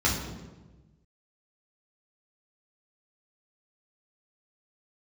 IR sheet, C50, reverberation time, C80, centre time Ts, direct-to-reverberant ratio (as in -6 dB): 4.0 dB, 1.2 s, 6.5 dB, 46 ms, -5.5 dB